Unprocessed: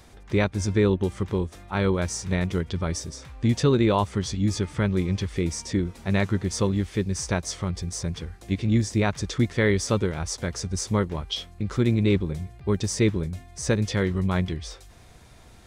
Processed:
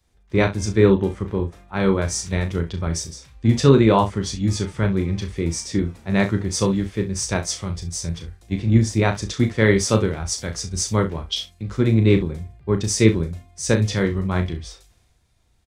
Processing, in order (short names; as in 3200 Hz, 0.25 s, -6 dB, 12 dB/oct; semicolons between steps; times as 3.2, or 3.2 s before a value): early reflections 36 ms -7.5 dB, 66 ms -14.5 dB; three-band expander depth 70%; gain +3 dB